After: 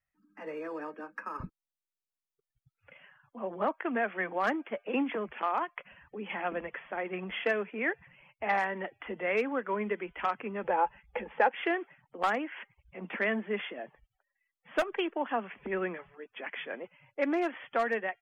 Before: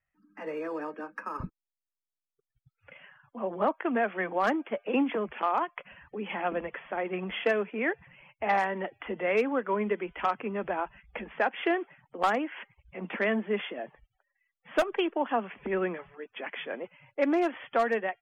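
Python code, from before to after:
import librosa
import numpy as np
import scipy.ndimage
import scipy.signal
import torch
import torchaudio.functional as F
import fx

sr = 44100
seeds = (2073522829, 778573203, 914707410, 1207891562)

y = fx.dynamic_eq(x, sr, hz=1900.0, q=1.3, threshold_db=-44.0, ratio=4.0, max_db=4)
y = fx.small_body(y, sr, hz=(500.0, 850.0), ring_ms=45, db=fx.line((10.63, 15.0), (11.51, 12.0)), at=(10.63, 11.51), fade=0.02)
y = y * librosa.db_to_amplitude(-4.0)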